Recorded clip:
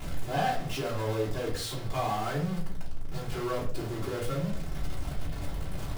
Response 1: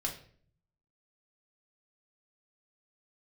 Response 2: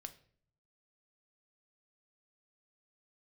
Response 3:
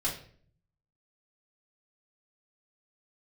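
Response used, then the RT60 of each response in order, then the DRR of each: 3; 0.50 s, 0.55 s, 0.50 s; -2.0 dB, 7.0 dB, -7.5 dB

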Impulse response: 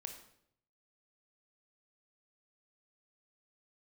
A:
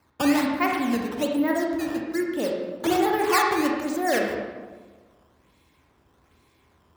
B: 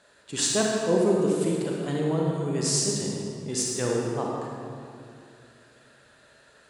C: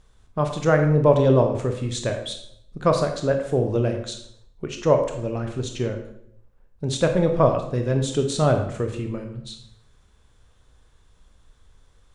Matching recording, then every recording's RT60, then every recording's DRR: C; 1.4 s, 2.4 s, 0.70 s; 0.0 dB, -3.0 dB, 4.5 dB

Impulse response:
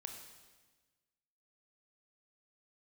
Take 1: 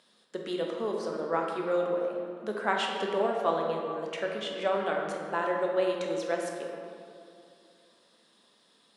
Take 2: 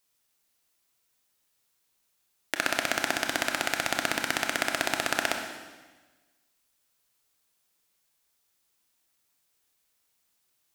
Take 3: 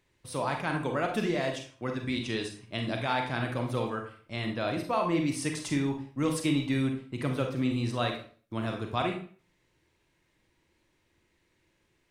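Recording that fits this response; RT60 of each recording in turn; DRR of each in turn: 2; 2.5 s, 1.3 s, 0.45 s; 0.0 dB, 3.0 dB, 3.0 dB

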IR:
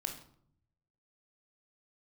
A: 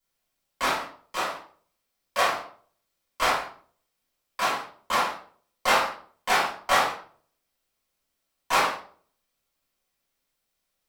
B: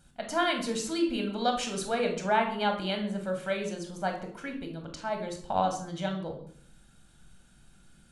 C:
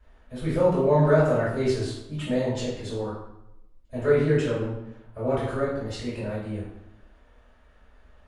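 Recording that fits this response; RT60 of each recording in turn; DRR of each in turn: B; 0.50 s, 0.65 s, 0.85 s; -10.0 dB, 3.5 dB, -10.0 dB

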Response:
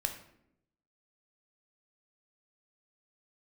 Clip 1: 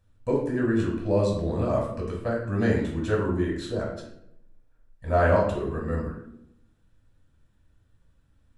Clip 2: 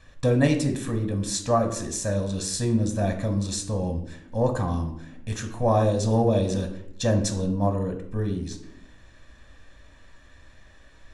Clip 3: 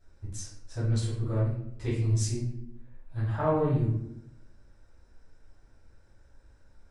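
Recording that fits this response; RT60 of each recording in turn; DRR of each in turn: 2; 0.75 s, 0.75 s, 0.75 s; -3.0 dB, 5.0 dB, -10.5 dB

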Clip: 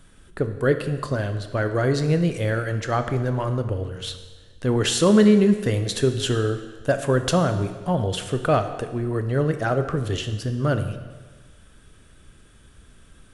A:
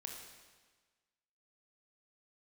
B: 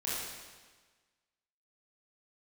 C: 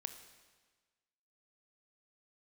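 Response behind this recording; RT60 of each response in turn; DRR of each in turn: C; 1.4 s, 1.4 s, 1.4 s; 1.0 dB, -9.0 dB, 8.0 dB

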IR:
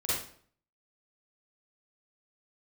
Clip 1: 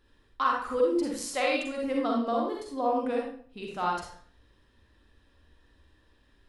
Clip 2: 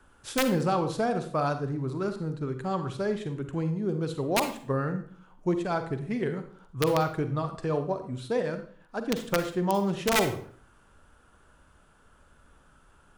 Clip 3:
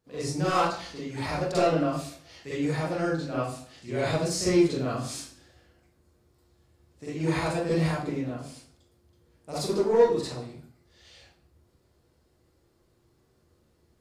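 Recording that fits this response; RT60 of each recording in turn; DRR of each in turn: 3; 0.55 s, 0.55 s, 0.55 s; -1.5 dB, 8.0 dB, -10.0 dB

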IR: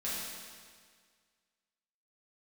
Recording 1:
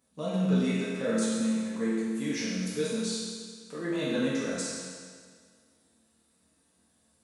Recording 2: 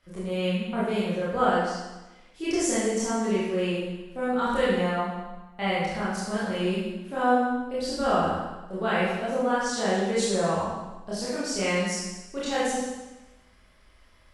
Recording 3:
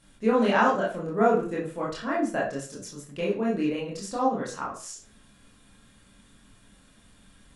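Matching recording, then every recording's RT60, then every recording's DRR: 1; 1.8 s, 1.1 s, 0.40 s; -9.5 dB, -10.0 dB, -6.0 dB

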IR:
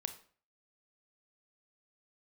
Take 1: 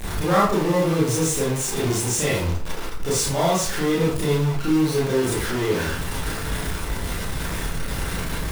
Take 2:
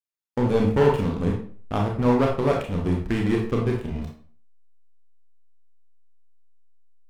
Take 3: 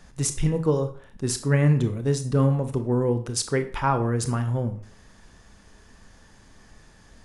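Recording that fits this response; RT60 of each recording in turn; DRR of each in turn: 3; 0.45 s, 0.45 s, 0.45 s; -7.5 dB, -0.5 dB, 8.5 dB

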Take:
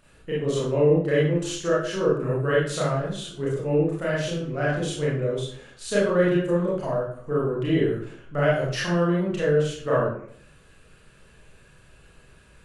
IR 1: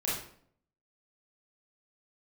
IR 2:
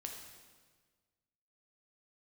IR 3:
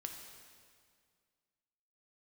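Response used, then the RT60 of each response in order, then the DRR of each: 1; 0.60 s, 1.5 s, 2.0 s; -7.5 dB, 1.5 dB, 3.0 dB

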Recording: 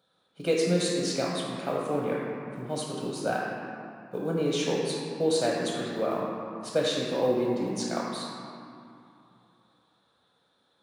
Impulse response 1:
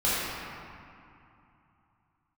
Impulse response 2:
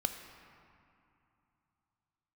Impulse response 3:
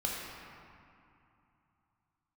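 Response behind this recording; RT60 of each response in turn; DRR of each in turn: 3; 2.7 s, 2.7 s, 2.7 s; -12.0 dB, 6.0 dB, -4.0 dB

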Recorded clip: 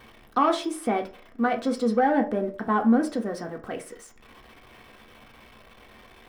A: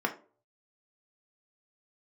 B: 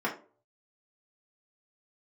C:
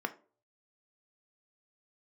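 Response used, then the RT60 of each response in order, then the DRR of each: A; 0.40 s, 0.40 s, 0.40 s; 2.0 dB, -5.0 dB, 7.0 dB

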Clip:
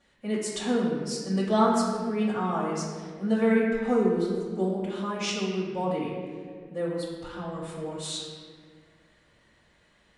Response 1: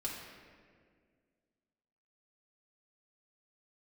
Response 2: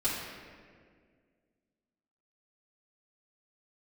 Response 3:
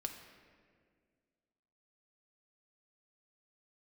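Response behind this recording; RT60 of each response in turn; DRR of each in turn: 2; 1.9 s, 1.9 s, 1.9 s; -4.5 dB, -10.5 dB, 3.5 dB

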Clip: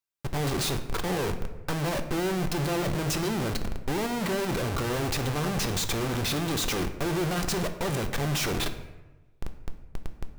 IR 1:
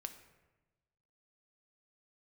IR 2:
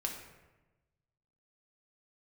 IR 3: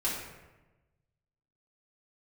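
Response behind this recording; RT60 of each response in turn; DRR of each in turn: 1; 1.1 s, 1.1 s, 1.1 s; 7.0 dB, 0.0 dB, -9.5 dB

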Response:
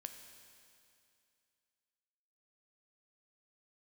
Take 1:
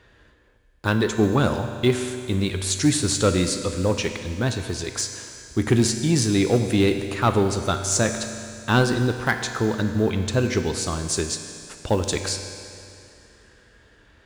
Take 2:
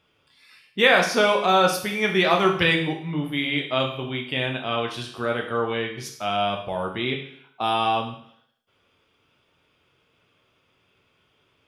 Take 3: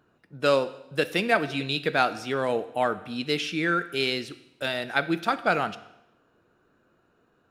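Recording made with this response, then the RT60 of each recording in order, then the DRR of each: 1; 2.5 s, 0.60 s, 0.90 s; 6.0 dB, 1.5 dB, 13.0 dB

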